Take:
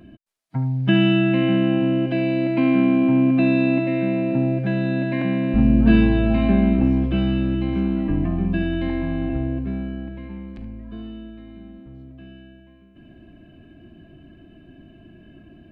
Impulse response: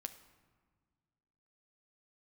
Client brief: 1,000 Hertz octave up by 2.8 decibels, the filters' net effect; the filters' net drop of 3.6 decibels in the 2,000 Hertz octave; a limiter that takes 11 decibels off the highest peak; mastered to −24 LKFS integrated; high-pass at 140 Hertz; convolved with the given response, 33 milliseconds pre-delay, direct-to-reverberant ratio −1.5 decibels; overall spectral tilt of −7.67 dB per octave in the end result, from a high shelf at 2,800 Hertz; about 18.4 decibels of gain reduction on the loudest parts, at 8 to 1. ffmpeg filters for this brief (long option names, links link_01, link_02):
-filter_complex "[0:a]highpass=140,equalizer=frequency=1000:width_type=o:gain=5.5,equalizer=frequency=2000:width_type=o:gain=-9,highshelf=frequency=2800:gain=4.5,acompressor=threshold=-31dB:ratio=8,alimiter=level_in=7dB:limit=-24dB:level=0:latency=1,volume=-7dB,asplit=2[link_01][link_02];[1:a]atrim=start_sample=2205,adelay=33[link_03];[link_02][link_03]afir=irnorm=-1:irlink=0,volume=5dB[link_04];[link_01][link_04]amix=inputs=2:normalize=0,volume=11.5dB"